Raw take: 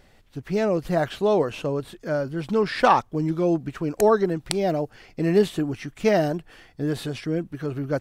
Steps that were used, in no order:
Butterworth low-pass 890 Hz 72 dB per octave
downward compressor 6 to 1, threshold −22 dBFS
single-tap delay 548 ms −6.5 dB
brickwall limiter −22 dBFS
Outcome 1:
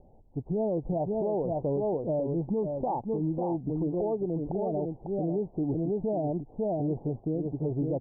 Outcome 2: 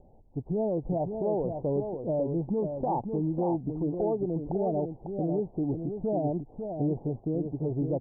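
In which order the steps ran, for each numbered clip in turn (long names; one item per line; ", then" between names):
single-tap delay, then downward compressor, then Butterworth low-pass, then brickwall limiter
Butterworth low-pass, then downward compressor, then brickwall limiter, then single-tap delay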